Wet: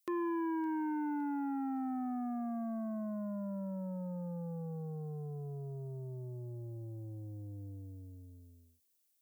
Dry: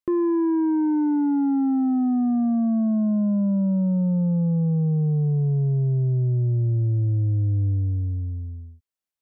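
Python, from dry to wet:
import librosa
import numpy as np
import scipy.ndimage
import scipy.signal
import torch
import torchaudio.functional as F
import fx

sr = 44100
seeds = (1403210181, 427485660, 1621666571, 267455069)

p1 = np.diff(x, prepend=0.0)
p2 = p1 + fx.echo_wet_highpass(p1, sr, ms=563, feedback_pct=50, hz=1500.0, wet_db=-17, dry=0)
y = p2 * 10.0 ** (12.0 / 20.0)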